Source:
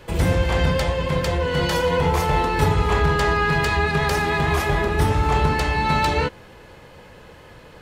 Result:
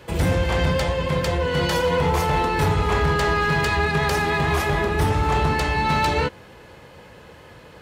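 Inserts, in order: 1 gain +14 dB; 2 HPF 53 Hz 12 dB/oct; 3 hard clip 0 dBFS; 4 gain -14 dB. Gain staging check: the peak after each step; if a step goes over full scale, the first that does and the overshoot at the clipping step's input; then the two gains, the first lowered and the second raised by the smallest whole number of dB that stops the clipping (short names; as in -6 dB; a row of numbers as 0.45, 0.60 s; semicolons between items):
+7.5, +8.0, 0.0, -14.0 dBFS; step 1, 8.0 dB; step 1 +6 dB, step 4 -6 dB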